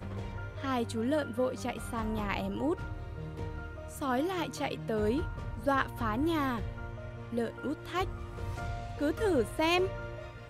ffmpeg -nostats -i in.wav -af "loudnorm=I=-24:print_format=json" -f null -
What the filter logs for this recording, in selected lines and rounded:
"input_i" : "-33.5",
"input_tp" : "-15.4",
"input_lra" : "2.4",
"input_thresh" : "-43.6",